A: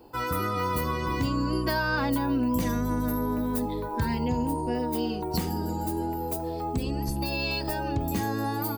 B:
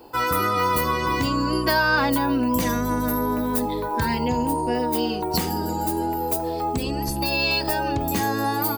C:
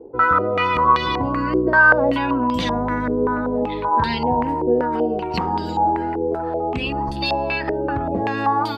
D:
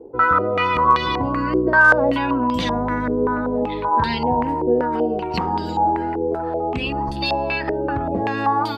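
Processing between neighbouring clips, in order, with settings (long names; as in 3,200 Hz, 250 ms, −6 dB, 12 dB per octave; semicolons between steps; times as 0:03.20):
low-shelf EQ 320 Hz −8.5 dB; level +8.5 dB
low-pass on a step sequencer 5.2 Hz 440–3,600 Hz
hard clipping −4.5 dBFS, distortion −41 dB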